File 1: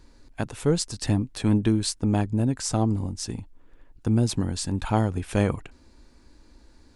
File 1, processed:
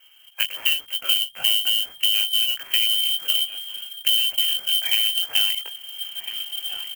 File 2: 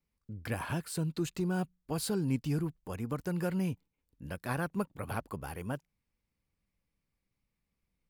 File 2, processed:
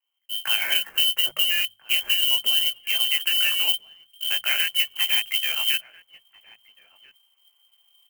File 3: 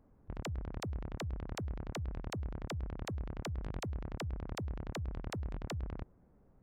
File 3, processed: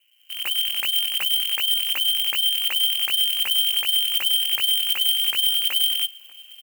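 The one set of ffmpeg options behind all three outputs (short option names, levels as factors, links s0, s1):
-filter_complex "[0:a]highpass=f=56:p=1,asplit=2[s0][s1];[s1]adelay=19,volume=0.708[s2];[s0][s2]amix=inputs=2:normalize=0,asubboost=boost=4:cutoff=100,lowpass=f=2700:t=q:w=0.5098,lowpass=f=2700:t=q:w=0.6013,lowpass=f=2700:t=q:w=0.9,lowpass=f=2700:t=q:w=2.563,afreqshift=-3200,acrossover=split=160|1300[s3][s4][s5];[s5]acrusher=bits=3:mode=log:mix=0:aa=0.000001[s6];[s3][s4][s6]amix=inputs=3:normalize=0,asplit=2[s7][s8];[s8]adelay=1341,volume=0.0891,highshelf=f=4000:g=-30.2[s9];[s7][s9]amix=inputs=2:normalize=0,dynaudnorm=f=150:g=5:m=3.98,bandreject=f=50:t=h:w=6,bandreject=f=100:t=h:w=6,bandreject=f=150:t=h:w=6,bandreject=f=200:t=h:w=6,acompressor=threshold=0.1:ratio=6,aemphasis=mode=production:type=50fm,volume=0.841"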